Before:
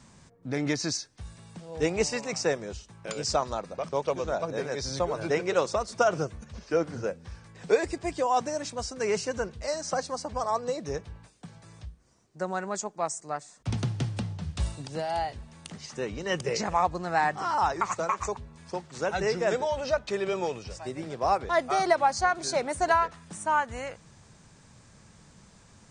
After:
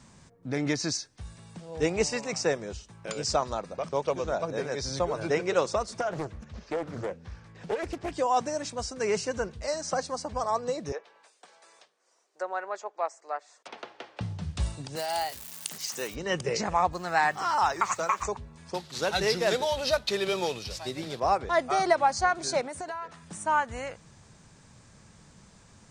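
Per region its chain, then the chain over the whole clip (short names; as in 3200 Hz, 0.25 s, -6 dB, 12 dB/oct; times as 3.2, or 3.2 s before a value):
6–8.13 compressor 3:1, threshold -27 dBFS + air absorption 70 m + Doppler distortion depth 0.53 ms
10.92–14.21 treble ducked by the level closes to 2800 Hz, closed at -30 dBFS + HPF 450 Hz 24 dB/oct
14.95–16.14 crackle 460/s -40 dBFS + RIAA curve recording
16.93–18.23 HPF 48 Hz + tilt shelf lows -4.5 dB, about 800 Hz + requantised 10-bit, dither none
18.74–21.2 CVSD 64 kbps + bell 4000 Hz +13 dB 0.97 oct
22.61–23.23 HPF 110 Hz + compressor 5:1, threshold -34 dBFS
whole clip: dry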